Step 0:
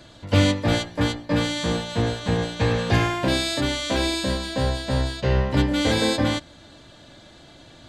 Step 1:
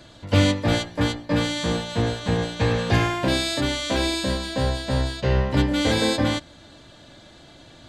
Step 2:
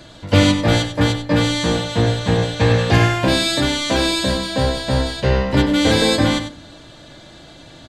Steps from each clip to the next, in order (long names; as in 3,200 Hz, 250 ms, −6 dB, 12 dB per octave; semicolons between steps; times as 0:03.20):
no processing that can be heard
single-tap delay 96 ms −10 dB; on a send at −14 dB: convolution reverb RT60 0.50 s, pre-delay 6 ms; on the sum: level +5.5 dB